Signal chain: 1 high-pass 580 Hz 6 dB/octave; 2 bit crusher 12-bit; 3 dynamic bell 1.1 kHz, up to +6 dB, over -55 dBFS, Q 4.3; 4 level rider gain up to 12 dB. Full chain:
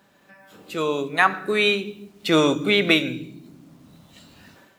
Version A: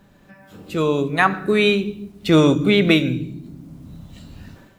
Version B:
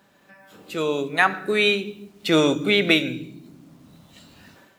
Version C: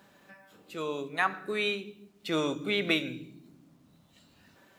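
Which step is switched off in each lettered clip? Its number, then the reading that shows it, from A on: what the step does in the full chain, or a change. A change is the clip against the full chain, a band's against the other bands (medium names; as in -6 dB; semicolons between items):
1, 125 Hz band +10.0 dB; 3, 1 kHz band -2.0 dB; 4, momentary loudness spread change +2 LU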